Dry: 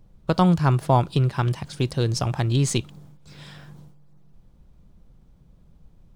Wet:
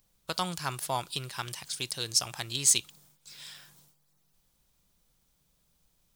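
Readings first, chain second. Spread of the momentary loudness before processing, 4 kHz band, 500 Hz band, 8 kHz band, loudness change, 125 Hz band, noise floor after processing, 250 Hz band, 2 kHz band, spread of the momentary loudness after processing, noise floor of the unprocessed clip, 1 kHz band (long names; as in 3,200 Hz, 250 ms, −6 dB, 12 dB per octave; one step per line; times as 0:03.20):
8 LU, +2.5 dB, −14.5 dB, +7.5 dB, −7.0 dB, −21.5 dB, −72 dBFS, −20.0 dB, −4.0 dB, 21 LU, −55 dBFS, −10.0 dB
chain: first-order pre-emphasis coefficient 0.97
level +7.5 dB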